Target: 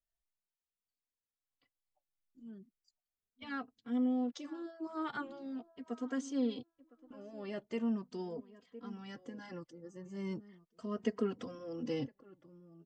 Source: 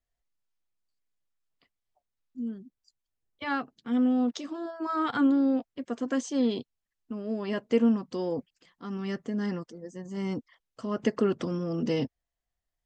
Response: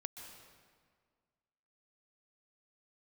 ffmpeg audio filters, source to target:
-filter_complex "[0:a]asplit=2[a][b];[b]adelay=1011,lowpass=f=1.7k:p=1,volume=-19dB,asplit=2[c][d];[d]adelay=1011,lowpass=f=1.7k:p=1,volume=0.24[e];[c][e]amix=inputs=2:normalize=0[f];[a][f]amix=inputs=2:normalize=0,asplit=2[g][h];[h]adelay=2.9,afreqshift=0.39[i];[g][i]amix=inputs=2:normalize=1,volume=-7dB"

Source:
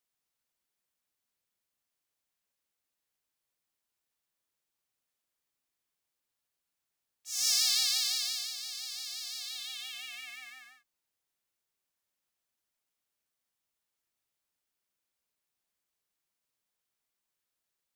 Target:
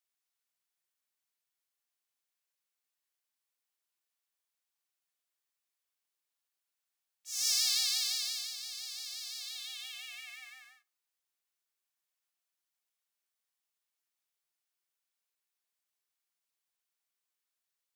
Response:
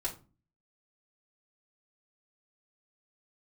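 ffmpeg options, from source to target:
-filter_complex "[0:a]highpass=f=880:p=1,asplit=2[a][b];[1:a]atrim=start_sample=2205[c];[b][c]afir=irnorm=-1:irlink=0,volume=-12dB[d];[a][d]amix=inputs=2:normalize=0,volume=-3.5dB"

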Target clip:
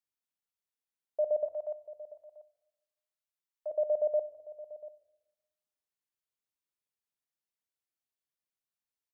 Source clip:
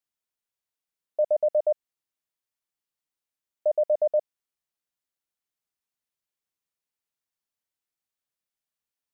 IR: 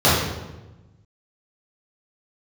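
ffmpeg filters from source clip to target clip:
-filter_complex "[0:a]asplit=3[a][b][c];[a]afade=t=out:st=1.44:d=0.02[d];[b]highpass=f=730:w=0.5412,highpass=f=730:w=1.3066,afade=t=in:st=1.44:d=0.02,afade=t=out:st=3.7:d=0.02[e];[c]afade=t=in:st=3.7:d=0.02[f];[d][e][f]amix=inputs=3:normalize=0,aecho=1:1:689:0.141,asplit=2[g][h];[1:a]atrim=start_sample=2205,asetrate=40131,aresample=44100[i];[h][i]afir=irnorm=-1:irlink=0,volume=-40.5dB[j];[g][j]amix=inputs=2:normalize=0,volume=-6.5dB"

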